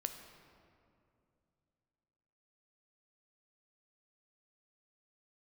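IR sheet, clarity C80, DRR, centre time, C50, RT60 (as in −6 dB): 8.5 dB, 6.0 dB, 34 ms, 7.5 dB, 2.5 s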